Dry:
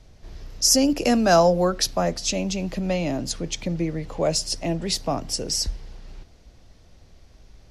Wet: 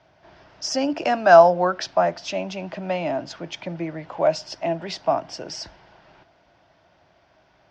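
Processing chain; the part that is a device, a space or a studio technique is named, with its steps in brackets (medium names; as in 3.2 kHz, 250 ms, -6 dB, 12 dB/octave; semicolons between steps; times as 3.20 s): kitchen radio (cabinet simulation 200–4500 Hz, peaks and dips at 230 Hz -10 dB, 460 Hz -9 dB, 650 Hz +8 dB, 930 Hz +7 dB, 1.5 kHz +7 dB, 4.1 kHz -7 dB)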